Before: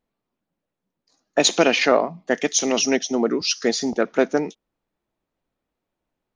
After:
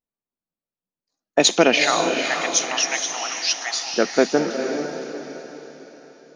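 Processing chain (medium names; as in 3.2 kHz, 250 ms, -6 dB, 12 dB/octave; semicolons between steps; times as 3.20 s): gate -35 dBFS, range -17 dB; 1.83–3.94 s: elliptic high-pass 720 Hz; echo that smears into a reverb 462 ms, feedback 44%, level -6 dB; trim +1.5 dB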